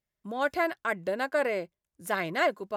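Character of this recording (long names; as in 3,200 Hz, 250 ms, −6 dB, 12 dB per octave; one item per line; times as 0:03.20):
background noise floor −90 dBFS
spectral slope −2.5 dB per octave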